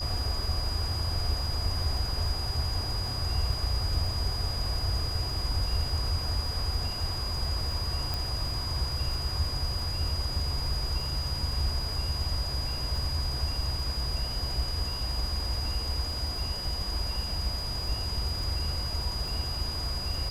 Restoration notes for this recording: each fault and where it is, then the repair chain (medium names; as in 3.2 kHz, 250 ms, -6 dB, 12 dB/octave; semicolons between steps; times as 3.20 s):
crackle 38 per s -37 dBFS
whine 4.9 kHz -34 dBFS
8.14 s: pop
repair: de-click; band-stop 4.9 kHz, Q 30